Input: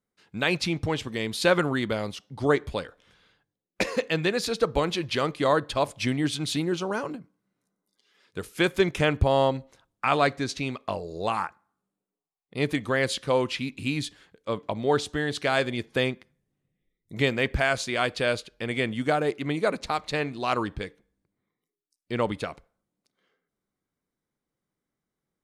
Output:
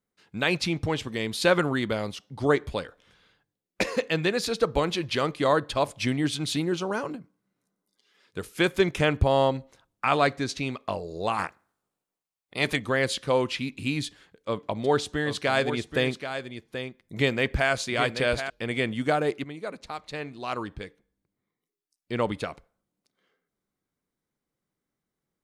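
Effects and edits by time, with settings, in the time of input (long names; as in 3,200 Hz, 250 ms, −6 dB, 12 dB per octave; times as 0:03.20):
0:11.38–0:12.76: ceiling on every frequency bin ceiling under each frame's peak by 15 dB
0:14.06–0:18.50: single-tap delay 781 ms −9 dB
0:19.44–0:22.36: fade in, from −12 dB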